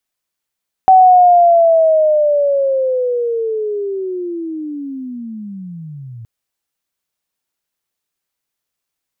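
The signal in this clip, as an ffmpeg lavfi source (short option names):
-f lavfi -i "aevalsrc='pow(10,(-3-26*t/5.37)/20)*sin(2*PI*(760*t-650*t*t/(2*5.37)))':d=5.37:s=44100"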